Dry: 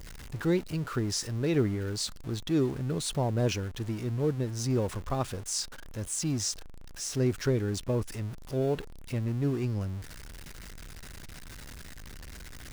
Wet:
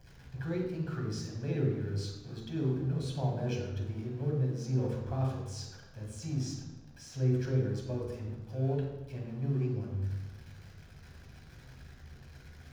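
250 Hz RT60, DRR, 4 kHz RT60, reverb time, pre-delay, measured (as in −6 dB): 1.4 s, −1.5 dB, 0.80 s, 1.1 s, 3 ms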